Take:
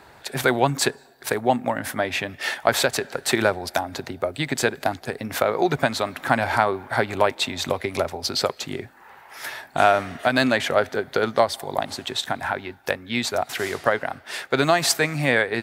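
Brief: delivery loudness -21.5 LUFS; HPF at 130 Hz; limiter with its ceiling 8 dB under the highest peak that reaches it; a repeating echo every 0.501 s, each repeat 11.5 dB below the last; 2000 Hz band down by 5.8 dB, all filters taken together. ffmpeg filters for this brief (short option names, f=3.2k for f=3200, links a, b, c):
-af "highpass=130,equalizer=f=2k:t=o:g=-8,alimiter=limit=-12.5dB:level=0:latency=1,aecho=1:1:501|1002|1503:0.266|0.0718|0.0194,volume=5dB"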